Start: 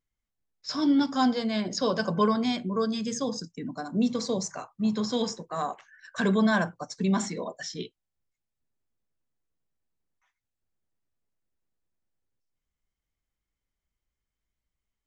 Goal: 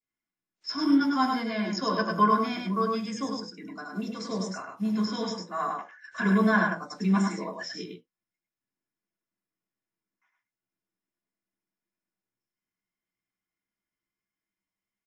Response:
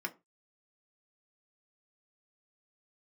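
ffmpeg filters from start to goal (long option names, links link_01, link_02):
-filter_complex "[0:a]asettb=1/sr,asplit=3[link_01][link_02][link_03];[link_01]atrim=end=3.414[link_04];[link_02]atrim=start=3.41:end=4.2,asetpts=PTS-STARTPTS,afade=type=in:duration=0.004:curve=qsin,afade=type=out:start_time=0.786:duration=0.004:curve=qsin,lowshelf=frequency=260:gain=-9.5[link_05];[link_03]atrim=start=4.196[link_06];[link_04][link_05]acrossfade=duration=0.004:curve1=hsin:curve2=qsin[link_07];[link_07][link_06]acrossfade=duration=0.004:curve1=qsin:curve2=hsin,aecho=1:1:102:0.631,acrusher=bits=7:mode=log:mix=0:aa=0.000001,adynamicequalizer=threshold=0.0112:dfrequency=1300:dqfactor=1.3:tfrequency=1300:tqfactor=1.3:attack=5:release=100:ratio=0.375:range=2.5:mode=boostabove:tftype=bell[link_08];[1:a]atrim=start_sample=2205,atrim=end_sample=3528[link_09];[link_08][link_09]afir=irnorm=-1:irlink=0,volume=-4dB" -ar 32000 -c:a wmav2 -b:a 64k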